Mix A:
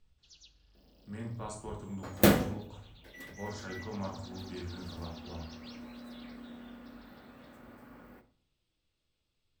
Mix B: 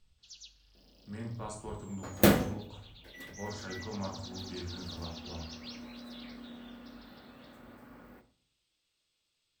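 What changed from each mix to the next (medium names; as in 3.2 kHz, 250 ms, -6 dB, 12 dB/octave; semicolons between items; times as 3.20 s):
first sound: add tilt EQ +3 dB/octave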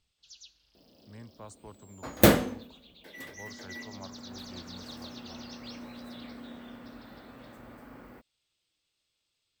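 second sound +5.5 dB; reverb: off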